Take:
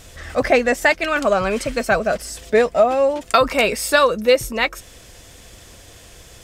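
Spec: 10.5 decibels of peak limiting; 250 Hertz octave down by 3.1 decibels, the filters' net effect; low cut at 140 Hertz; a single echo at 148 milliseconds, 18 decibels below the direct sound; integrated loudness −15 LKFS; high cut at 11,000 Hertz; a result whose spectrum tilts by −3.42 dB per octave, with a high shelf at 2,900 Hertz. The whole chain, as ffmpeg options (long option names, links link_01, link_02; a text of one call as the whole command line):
ffmpeg -i in.wav -af "highpass=140,lowpass=11000,equalizer=frequency=250:width_type=o:gain=-3,highshelf=frequency=2900:gain=-5.5,alimiter=limit=-13dB:level=0:latency=1,aecho=1:1:148:0.126,volume=8.5dB" out.wav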